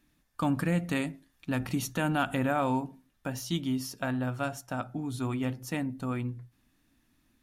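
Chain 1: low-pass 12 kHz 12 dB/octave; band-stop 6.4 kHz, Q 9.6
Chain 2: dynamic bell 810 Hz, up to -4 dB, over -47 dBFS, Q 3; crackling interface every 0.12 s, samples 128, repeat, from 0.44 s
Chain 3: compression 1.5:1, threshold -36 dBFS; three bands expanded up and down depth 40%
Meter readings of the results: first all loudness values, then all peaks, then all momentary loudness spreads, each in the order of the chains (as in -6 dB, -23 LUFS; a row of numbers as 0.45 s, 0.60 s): -32.0 LUFS, -32.0 LUFS, -35.5 LUFS; -15.5 dBFS, -16.0 dBFS, -19.0 dBFS; 10 LU, 9 LU, 9 LU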